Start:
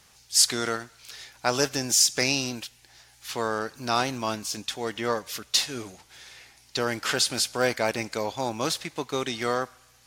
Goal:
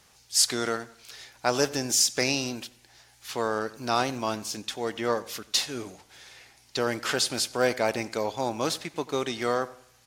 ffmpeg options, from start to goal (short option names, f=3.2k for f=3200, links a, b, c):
-filter_complex "[0:a]equalizer=f=460:t=o:w=2.4:g=3.5,asplit=2[a][b];[b]adelay=92,lowpass=f=2k:p=1,volume=-18dB,asplit=2[c][d];[d]adelay=92,lowpass=f=2k:p=1,volume=0.37,asplit=2[e][f];[f]adelay=92,lowpass=f=2k:p=1,volume=0.37[g];[c][e][g]amix=inputs=3:normalize=0[h];[a][h]amix=inputs=2:normalize=0,volume=-2.5dB"